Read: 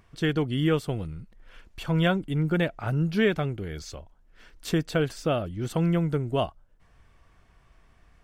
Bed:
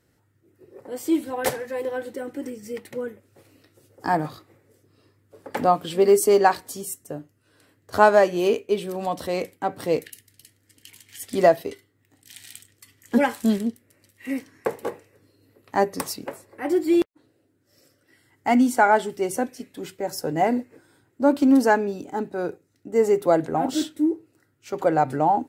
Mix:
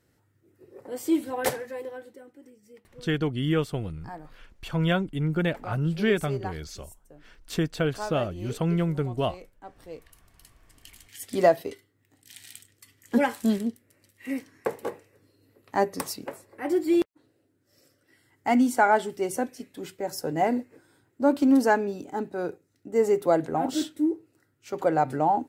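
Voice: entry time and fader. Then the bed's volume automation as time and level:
2.85 s, −1.0 dB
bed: 0:01.52 −2 dB
0:02.38 −19 dB
0:10.00 −19 dB
0:10.48 −3 dB

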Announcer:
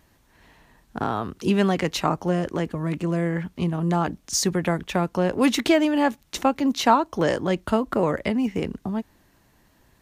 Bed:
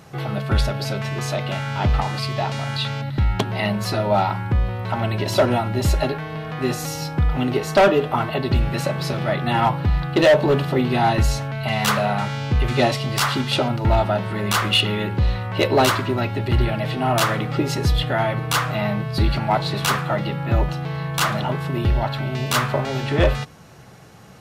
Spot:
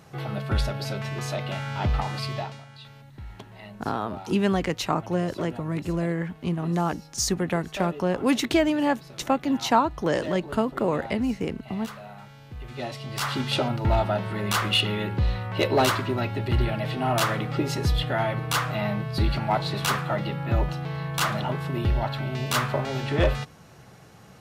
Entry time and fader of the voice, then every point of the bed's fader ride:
2.85 s, −2.5 dB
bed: 0:02.36 −5.5 dB
0:02.67 −21.5 dB
0:12.50 −21.5 dB
0:13.43 −4.5 dB

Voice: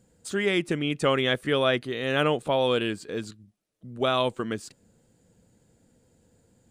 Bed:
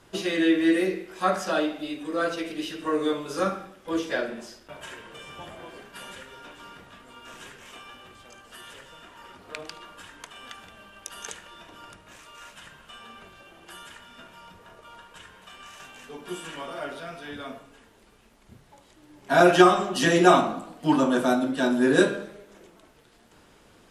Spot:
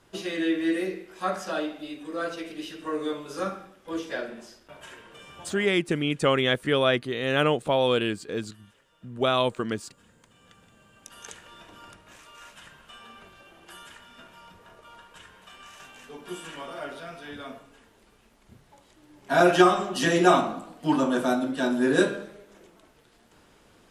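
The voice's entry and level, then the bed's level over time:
5.20 s, +1.0 dB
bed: 0:05.65 −4.5 dB
0:05.85 −17.5 dB
0:10.32 −17.5 dB
0:11.52 −2 dB

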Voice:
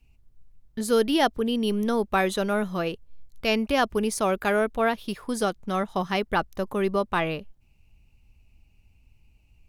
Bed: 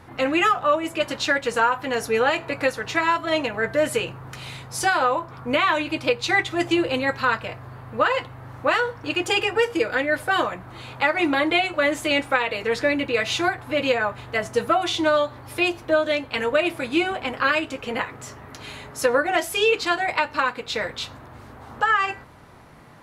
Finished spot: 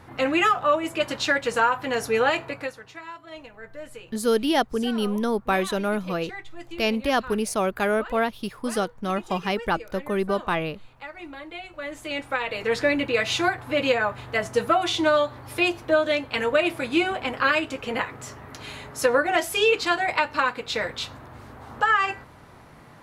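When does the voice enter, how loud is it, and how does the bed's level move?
3.35 s, 0.0 dB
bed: 0:02.39 −1 dB
0:02.94 −18.5 dB
0:11.51 −18.5 dB
0:12.70 −0.5 dB

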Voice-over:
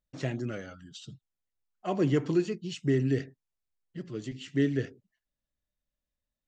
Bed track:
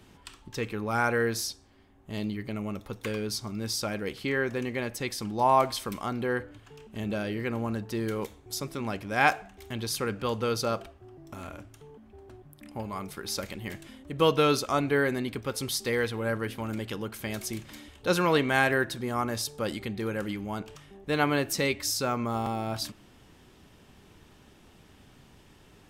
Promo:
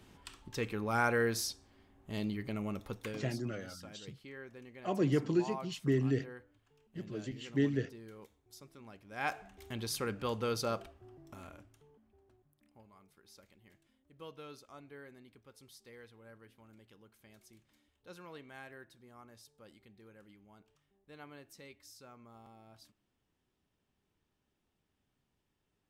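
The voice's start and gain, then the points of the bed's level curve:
3.00 s, −4.0 dB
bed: 0:02.94 −4 dB
0:03.46 −20.5 dB
0:09.03 −20.5 dB
0:09.48 −6 dB
0:11.10 −6 dB
0:12.99 −26.5 dB

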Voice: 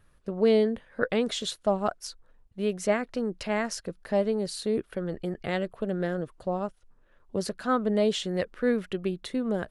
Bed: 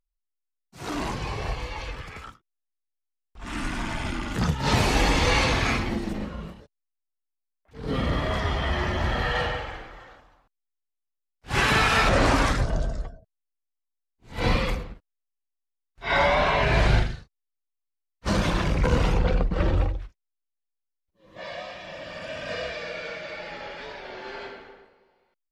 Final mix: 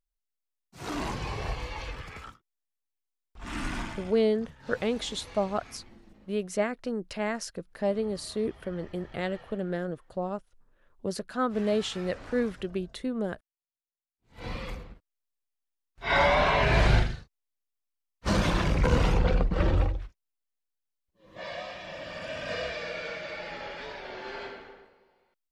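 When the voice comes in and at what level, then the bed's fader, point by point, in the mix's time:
3.70 s, −2.5 dB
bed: 0:03.79 −3 dB
0:04.32 −26 dB
0:13.82 −26 dB
0:15.23 −1.5 dB

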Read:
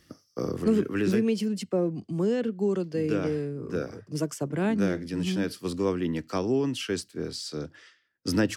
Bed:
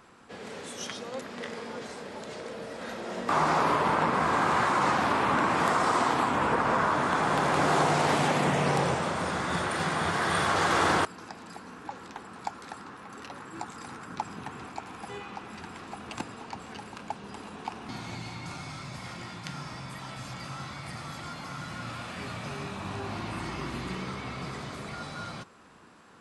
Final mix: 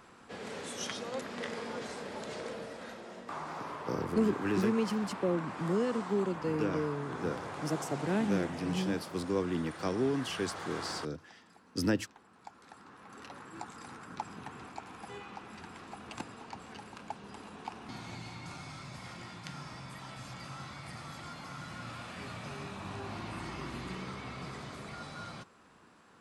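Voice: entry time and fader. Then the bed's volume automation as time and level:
3.50 s, −5.0 dB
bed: 0:02.49 −1 dB
0:03.43 −16.5 dB
0:12.37 −16.5 dB
0:13.22 −5.5 dB

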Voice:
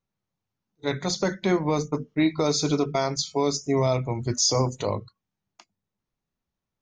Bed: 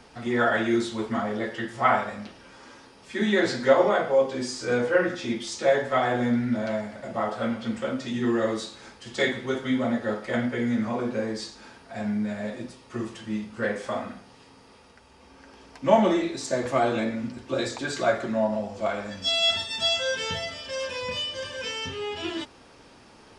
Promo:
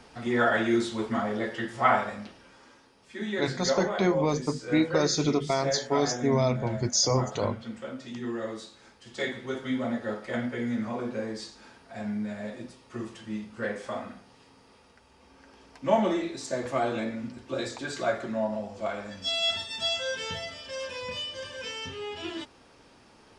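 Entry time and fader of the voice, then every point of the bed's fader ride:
2.55 s, −2.0 dB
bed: 0:02.09 −1 dB
0:02.83 −9 dB
0:08.86 −9 dB
0:09.67 −4.5 dB

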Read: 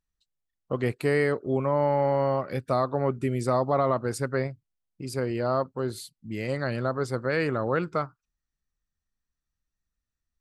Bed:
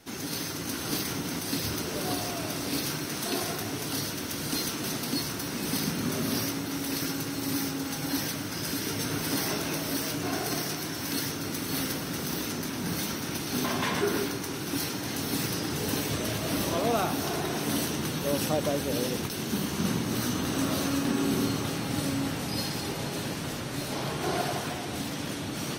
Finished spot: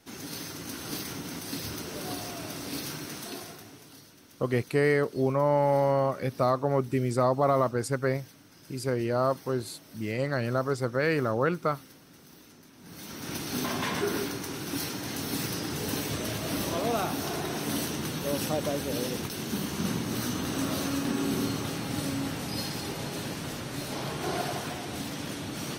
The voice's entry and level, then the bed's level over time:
3.70 s, 0.0 dB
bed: 0:03.10 −5 dB
0:04.04 −21 dB
0:12.75 −21 dB
0:13.32 −2 dB

